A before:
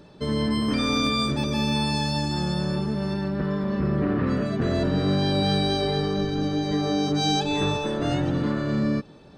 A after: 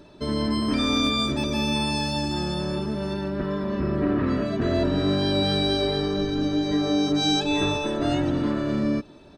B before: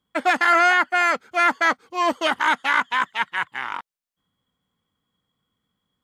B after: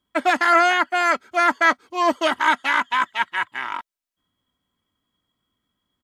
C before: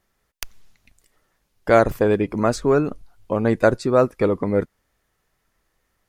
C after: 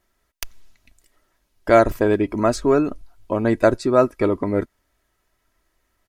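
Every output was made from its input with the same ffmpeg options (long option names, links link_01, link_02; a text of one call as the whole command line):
ffmpeg -i in.wav -af "aecho=1:1:3.1:0.44" out.wav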